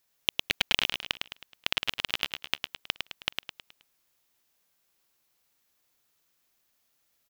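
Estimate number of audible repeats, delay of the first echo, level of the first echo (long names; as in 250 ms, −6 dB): 5, 106 ms, −5.0 dB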